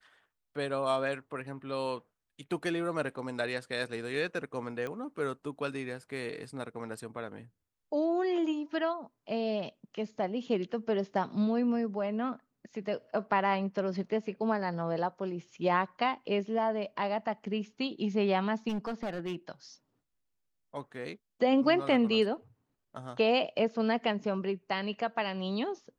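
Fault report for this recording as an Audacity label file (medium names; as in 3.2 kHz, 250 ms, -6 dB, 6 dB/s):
4.870000	4.870000	pop -25 dBFS
18.680000	19.350000	clipped -30.5 dBFS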